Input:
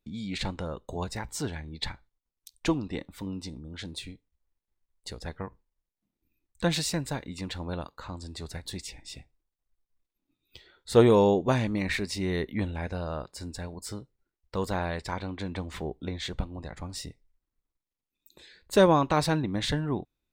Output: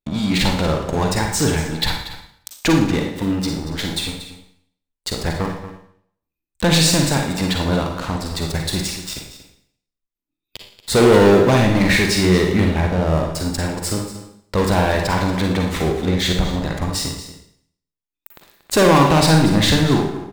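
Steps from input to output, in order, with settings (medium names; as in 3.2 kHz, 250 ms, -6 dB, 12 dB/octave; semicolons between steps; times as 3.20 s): 12.80–13.35 s: low-pass 1.1 kHz 6 dB/octave; waveshaping leveller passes 5; in parallel at -2.5 dB: compression, threshold -40 dBFS, peak gain reduction 28 dB; on the sum: delay 234 ms -13.5 dB; Schroeder reverb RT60 0.61 s, DRR 2 dB; trim -4.5 dB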